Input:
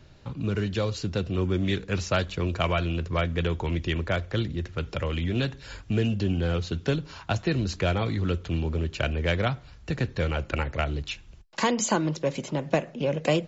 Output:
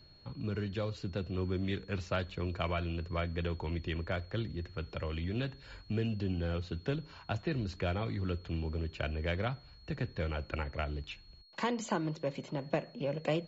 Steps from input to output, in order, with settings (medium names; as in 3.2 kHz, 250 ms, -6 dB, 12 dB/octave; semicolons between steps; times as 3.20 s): peaking EQ 6.5 kHz -9.5 dB 1.1 oct; whistle 4.3 kHz -51 dBFS; trim -8.5 dB